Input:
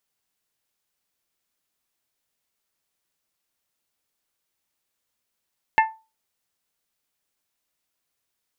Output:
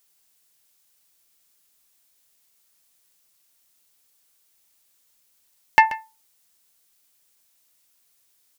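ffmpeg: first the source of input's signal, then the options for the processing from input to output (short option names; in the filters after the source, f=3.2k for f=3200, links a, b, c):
-f lavfi -i "aevalsrc='0.282*pow(10,-3*t/0.29)*sin(2*PI*885*t)+0.178*pow(10,-3*t/0.179)*sin(2*PI*1770*t)+0.112*pow(10,-3*t/0.157)*sin(2*PI*2124*t)+0.0708*pow(10,-3*t/0.134)*sin(2*PI*2655*t)':d=0.89:s=44100"
-af "highshelf=f=3.7k:g=11,acontrast=34,aecho=1:1:133:0.158"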